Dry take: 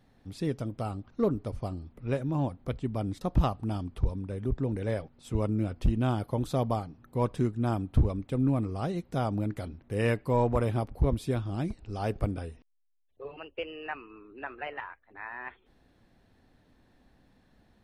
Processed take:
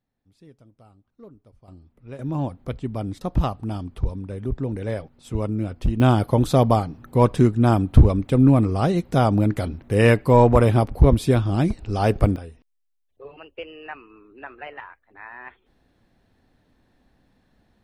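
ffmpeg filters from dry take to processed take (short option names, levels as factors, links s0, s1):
-af "asetnsamples=n=441:p=0,asendcmd='1.68 volume volume -8dB;2.19 volume volume 3.5dB;6 volume volume 11.5dB;12.36 volume volume 0.5dB',volume=0.119"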